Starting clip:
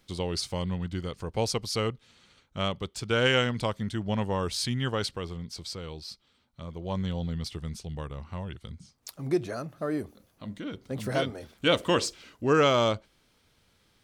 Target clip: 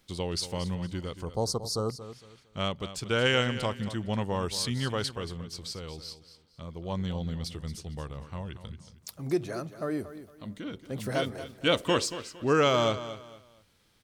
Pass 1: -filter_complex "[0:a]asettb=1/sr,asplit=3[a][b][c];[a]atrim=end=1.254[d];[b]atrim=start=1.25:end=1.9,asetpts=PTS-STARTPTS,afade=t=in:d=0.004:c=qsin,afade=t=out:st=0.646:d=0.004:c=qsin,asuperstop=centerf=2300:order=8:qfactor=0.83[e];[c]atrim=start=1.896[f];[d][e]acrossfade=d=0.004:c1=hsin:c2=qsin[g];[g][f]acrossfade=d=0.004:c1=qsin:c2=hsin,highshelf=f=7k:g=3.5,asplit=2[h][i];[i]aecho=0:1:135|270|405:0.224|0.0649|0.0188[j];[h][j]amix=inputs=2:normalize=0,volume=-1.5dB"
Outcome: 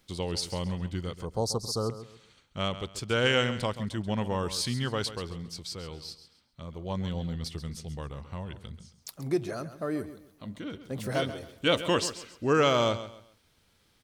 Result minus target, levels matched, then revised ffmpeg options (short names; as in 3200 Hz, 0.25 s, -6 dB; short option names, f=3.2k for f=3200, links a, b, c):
echo 94 ms early
-filter_complex "[0:a]asettb=1/sr,asplit=3[a][b][c];[a]atrim=end=1.254[d];[b]atrim=start=1.25:end=1.9,asetpts=PTS-STARTPTS,afade=t=in:d=0.004:c=qsin,afade=t=out:st=0.646:d=0.004:c=qsin,asuperstop=centerf=2300:order=8:qfactor=0.83[e];[c]atrim=start=1.896[f];[d][e]acrossfade=d=0.004:c1=hsin:c2=qsin[g];[g][f]acrossfade=d=0.004:c1=qsin:c2=hsin,highshelf=f=7k:g=3.5,asplit=2[h][i];[i]aecho=0:1:229|458|687:0.224|0.0649|0.0188[j];[h][j]amix=inputs=2:normalize=0,volume=-1.5dB"